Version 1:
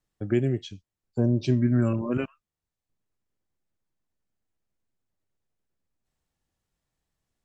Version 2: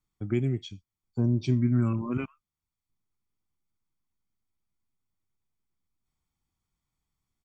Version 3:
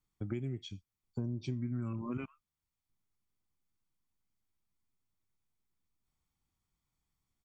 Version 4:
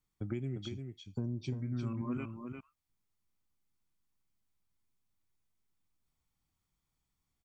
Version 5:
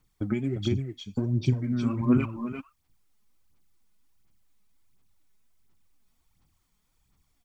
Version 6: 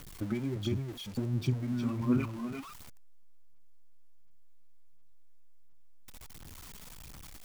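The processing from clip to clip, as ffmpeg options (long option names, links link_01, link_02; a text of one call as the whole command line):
ffmpeg -i in.wav -af "aecho=1:1:0.9:0.6,volume=-4.5dB" out.wav
ffmpeg -i in.wav -af "acompressor=threshold=-33dB:ratio=5,volume=-1.5dB" out.wav
ffmpeg -i in.wav -af "aecho=1:1:350:0.501" out.wav
ffmpeg -i in.wav -af "aphaser=in_gain=1:out_gain=1:delay=4.8:decay=0.57:speed=1.4:type=sinusoidal,volume=9dB" out.wav
ffmpeg -i in.wav -af "aeval=exprs='val(0)+0.5*0.0168*sgn(val(0))':channel_layout=same,volume=-6.5dB" out.wav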